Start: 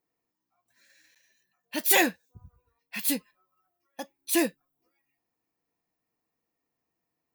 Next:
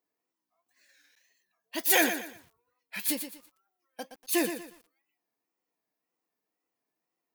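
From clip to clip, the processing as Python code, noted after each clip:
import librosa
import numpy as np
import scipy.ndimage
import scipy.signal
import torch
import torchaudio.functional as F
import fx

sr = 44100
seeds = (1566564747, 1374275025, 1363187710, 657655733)

y = scipy.signal.sosfilt(scipy.signal.butter(2, 240.0, 'highpass', fs=sr, output='sos'), x)
y = fx.wow_flutter(y, sr, seeds[0], rate_hz=2.1, depth_cents=120.0)
y = fx.echo_crushed(y, sr, ms=119, feedback_pct=35, bits=8, wet_db=-9.0)
y = F.gain(torch.from_numpy(y), -2.0).numpy()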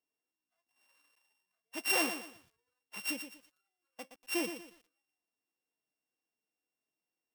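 y = np.r_[np.sort(x[:len(x) // 16 * 16].reshape(-1, 16), axis=1).ravel(), x[len(x) // 16 * 16:]]
y = F.gain(torch.from_numpy(y), -7.0).numpy()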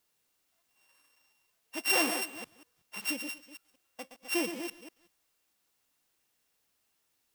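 y = fx.reverse_delay(x, sr, ms=188, wet_db=-8)
y = fx.dmg_noise_colour(y, sr, seeds[1], colour='white', level_db=-80.0)
y = F.gain(torch.from_numpy(y), 3.0).numpy()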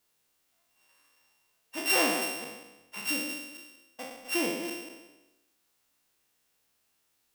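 y = fx.spec_trails(x, sr, decay_s=1.03)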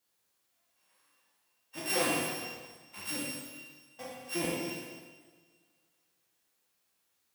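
y = fx.octave_divider(x, sr, octaves=1, level_db=-2.0)
y = fx.highpass(y, sr, hz=150.0, slope=6)
y = fx.rev_double_slope(y, sr, seeds[2], early_s=0.87, late_s=2.5, knee_db=-19, drr_db=-2.0)
y = F.gain(torch.from_numpy(y), -6.5).numpy()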